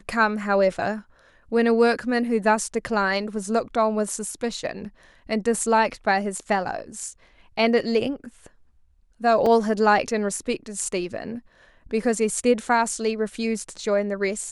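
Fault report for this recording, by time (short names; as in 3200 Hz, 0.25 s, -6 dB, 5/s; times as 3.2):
9.46 gap 3.7 ms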